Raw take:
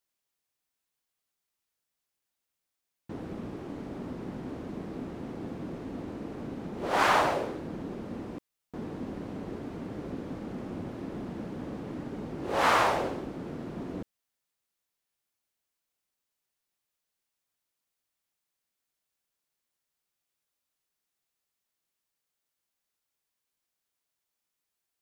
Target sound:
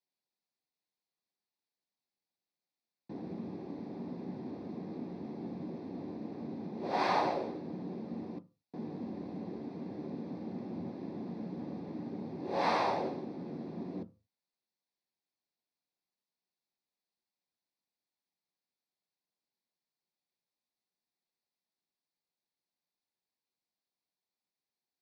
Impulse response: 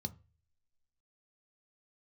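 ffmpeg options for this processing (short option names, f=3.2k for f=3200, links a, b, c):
-filter_complex "[0:a]highpass=250,lowpass=4.8k[a];[1:a]atrim=start_sample=2205,afade=t=out:st=0.29:d=0.01,atrim=end_sample=13230[b];[a][b]afir=irnorm=-1:irlink=0,volume=-5.5dB"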